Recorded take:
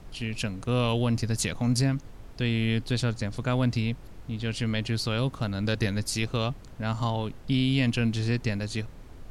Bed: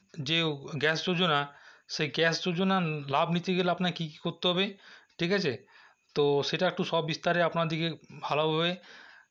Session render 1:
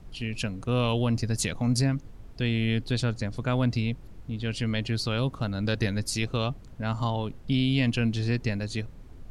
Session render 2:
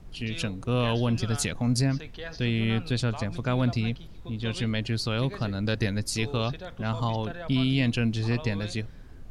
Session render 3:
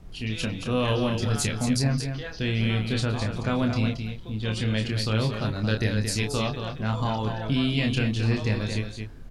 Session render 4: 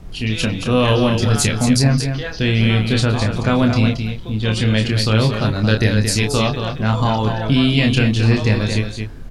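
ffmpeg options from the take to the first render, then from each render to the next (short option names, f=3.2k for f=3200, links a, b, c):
-af "afftdn=nr=6:nf=-45"
-filter_complex "[1:a]volume=-13.5dB[a];[0:a][a]amix=inputs=2:normalize=0"
-filter_complex "[0:a]asplit=2[a][b];[b]adelay=28,volume=-5dB[c];[a][c]amix=inputs=2:normalize=0,aecho=1:1:224:0.447"
-af "volume=9.5dB,alimiter=limit=-3dB:level=0:latency=1"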